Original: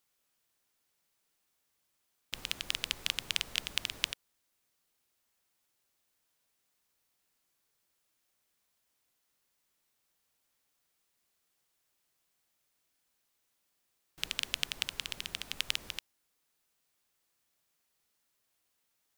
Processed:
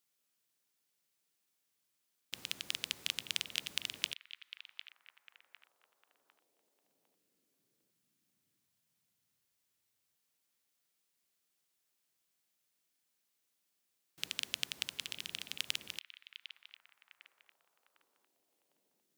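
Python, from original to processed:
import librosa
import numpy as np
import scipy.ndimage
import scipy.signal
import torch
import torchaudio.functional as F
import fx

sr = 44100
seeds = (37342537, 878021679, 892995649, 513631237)

y = scipy.signal.sosfilt(scipy.signal.butter(2, 130.0, 'highpass', fs=sr, output='sos'), x)
y = fx.peak_eq(y, sr, hz=900.0, db=-5.0, octaves=2.4)
y = fx.echo_stepped(y, sr, ms=753, hz=2700.0, octaves=-0.7, feedback_pct=70, wet_db=-11.0)
y = F.gain(torch.from_numpy(y), -2.5).numpy()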